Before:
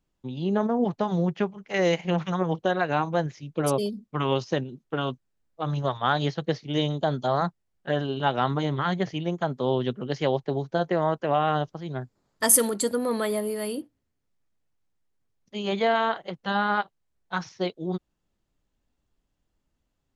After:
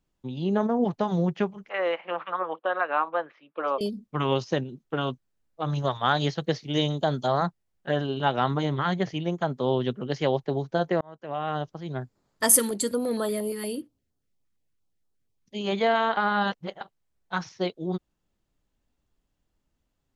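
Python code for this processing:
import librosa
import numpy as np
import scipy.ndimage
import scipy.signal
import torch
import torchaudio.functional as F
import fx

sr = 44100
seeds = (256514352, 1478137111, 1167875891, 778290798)

y = fx.cabinet(x, sr, low_hz=380.0, low_slope=24, high_hz=2700.0, hz=(400.0, 730.0, 1200.0, 2100.0), db=(-10, -3, 8, -4), at=(1.69, 3.81))
y = fx.high_shelf(y, sr, hz=4600.0, db=6.5, at=(5.72, 7.32))
y = fx.filter_held_notch(y, sr, hz=8.6, low_hz=630.0, high_hz=2200.0, at=(12.59, 15.61))
y = fx.edit(y, sr, fx.fade_in_span(start_s=11.01, length_s=0.91),
    fx.reverse_span(start_s=16.17, length_s=0.64), tone=tone)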